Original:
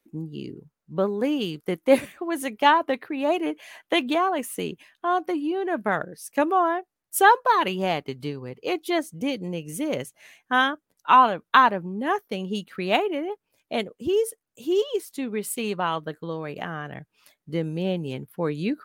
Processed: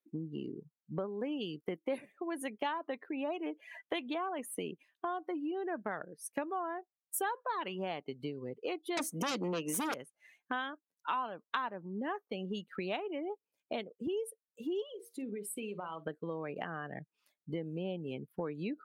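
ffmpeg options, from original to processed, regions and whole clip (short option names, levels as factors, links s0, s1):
-filter_complex "[0:a]asettb=1/sr,asplit=3[s0][s1][s2];[s0]atrim=end=8.974[s3];[s1]atrim=start=8.97:end=9.94,asetpts=PTS-STARTPTS,afade=t=in:d=0.004:c=qsin,afade=t=out:st=0.966:d=0.004:c=qsin,highpass=f=190:w=0.5412,highpass=f=190:w=1.3066,aeval=exprs='0.224*sin(PI/2*5.62*val(0)/0.224)':c=same[s4];[s2]atrim=start=9.936[s5];[s3][s4]acrossfade=d=0.004:c1=hsin:c2=qsin[s6];[s6][s5]acrossfade=d=0.004:c1=qsin:c2=hsin,asettb=1/sr,asplit=3[s7][s8][s9];[s7]atrim=end=14.864[s10];[s8]atrim=start=14.86:end=16.05,asetpts=PTS-STARTPTS,afade=t=in:d=0.004:c=qsin,afade=t=out:st=1.186:d=0.004:c=qsin,acompressor=threshold=0.0178:ratio=5:attack=3.2:release=140:knee=1:detection=peak,asplit=2[s11][s12];[s12]adelay=49,volume=0.224[s13];[s11][s13]amix=inputs=2:normalize=0,atrim=end_sample=52479,bandreject=f=93.57:t=h:w=4,bandreject=f=187.14:t=h:w=4,bandreject=f=280.71:t=h:w=4,bandreject=f=374.28:t=h:w=4,bandreject=f=467.85:t=h:w=4,bandreject=f=561.42:t=h:w=4,bandreject=f=654.99:t=h:w=4,bandreject=f=748.56:t=h:w=4,bandreject=f=842.13:t=h:w=4,bandreject=f=935.7:t=h:w=4,bandreject=f=1029.27:t=h:w=4,bandreject=f=1122.84:t=h:w=4,bandreject=f=1216.41:t=h:w=4,bandreject=f=1309.98:t=h:w=4,bandreject=f=1403.55:t=h:w=4,bandreject=f=1497.12:t=h:w=4,bandreject=f=1590.69:t=h:w=4[s14];[s9]atrim=start=16.046[s15];[s10][s14]acrossfade=d=0.004:c1=hsin:c2=qsin[s16];[s16][s15]acrossfade=d=0.004:c1=qsin:c2=hsin,highpass=170,afftdn=nr=19:nf=-39,acompressor=threshold=0.0126:ratio=4,volume=1.12"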